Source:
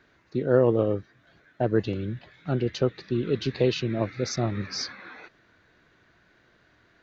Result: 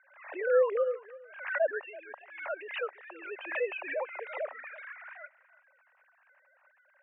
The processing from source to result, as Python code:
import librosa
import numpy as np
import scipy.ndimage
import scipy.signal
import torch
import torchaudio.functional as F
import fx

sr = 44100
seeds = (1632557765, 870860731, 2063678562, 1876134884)

y = fx.sine_speech(x, sr)
y = scipy.signal.sosfilt(scipy.signal.cheby1(4, 1.0, [560.0, 2600.0], 'bandpass', fs=sr, output='sos'), y)
y = y + 10.0 ** (-19.5 / 20.0) * np.pad(y, (int(333 * sr / 1000.0), 0))[:len(y)]
y = fx.pre_swell(y, sr, db_per_s=88.0)
y = F.gain(torch.from_numpy(y), 2.5).numpy()